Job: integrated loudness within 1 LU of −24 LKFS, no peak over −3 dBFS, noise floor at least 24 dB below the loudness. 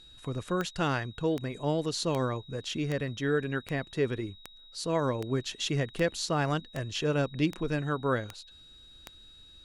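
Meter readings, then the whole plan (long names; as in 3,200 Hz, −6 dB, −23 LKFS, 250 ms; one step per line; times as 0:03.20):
number of clicks 12; interfering tone 3,800 Hz; level of the tone −52 dBFS; integrated loudness −31.0 LKFS; sample peak −15.5 dBFS; target loudness −24.0 LKFS
→ click removal
notch filter 3,800 Hz, Q 30
level +7 dB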